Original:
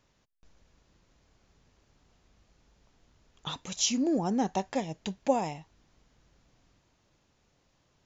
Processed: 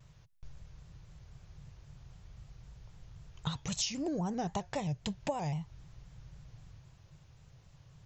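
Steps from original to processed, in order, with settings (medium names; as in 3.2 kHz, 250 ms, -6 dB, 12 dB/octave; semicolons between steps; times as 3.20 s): resonant low shelf 180 Hz +9.5 dB, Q 3; compression 5:1, threshold -36 dBFS, peak gain reduction 13.5 dB; vibrato with a chosen wave square 3.8 Hz, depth 100 cents; trim +3.5 dB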